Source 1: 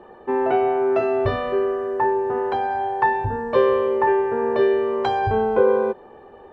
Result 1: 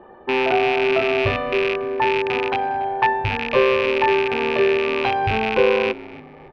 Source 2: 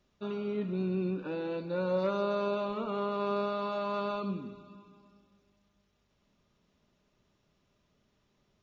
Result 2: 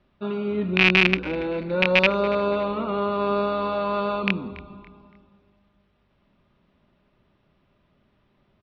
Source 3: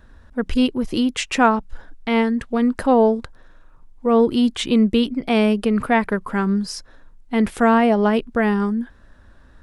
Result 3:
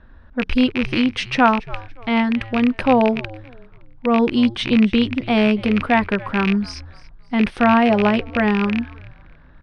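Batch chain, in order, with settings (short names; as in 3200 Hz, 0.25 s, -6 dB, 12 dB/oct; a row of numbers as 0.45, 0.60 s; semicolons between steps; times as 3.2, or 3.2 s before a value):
rattling part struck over -33 dBFS, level -12 dBFS; polynomial smoothing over 15 samples; notch 450 Hz, Q 12; low-pass opened by the level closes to 2900 Hz, open at -18 dBFS; frequency-shifting echo 0.283 s, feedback 33%, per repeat -120 Hz, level -19.5 dB; normalise peaks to -3 dBFS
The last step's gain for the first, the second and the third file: +0.5, +8.5, +1.0 dB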